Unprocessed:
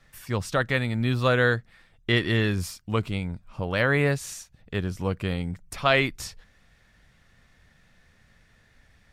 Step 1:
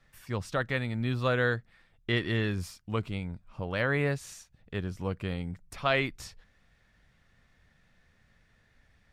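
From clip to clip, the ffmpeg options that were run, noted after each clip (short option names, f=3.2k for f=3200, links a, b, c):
-af "highshelf=f=5.7k:g=-5.5,volume=-5.5dB"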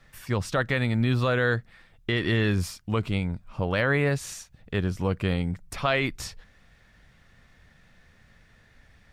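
-af "alimiter=limit=-21dB:level=0:latency=1:release=67,volume=8dB"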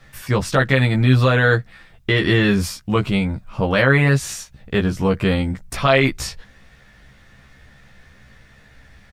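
-filter_complex "[0:a]asplit=2[a][b];[b]adelay=15,volume=-3dB[c];[a][c]amix=inputs=2:normalize=0,volume=7dB"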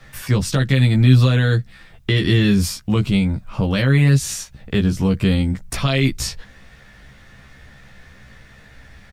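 -filter_complex "[0:a]acrossover=split=310|3000[a][b][c];[b]acompressor=threshold=-37dB:ratio=2.5[d];[a][d][c]amix=inputs=3:normalize=0,volume=3.5dB"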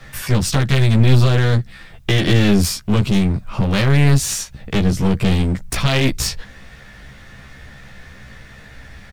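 -af "aeval=exprs='clip(val(0),-1,0.0631)':c=same,volume=5dB"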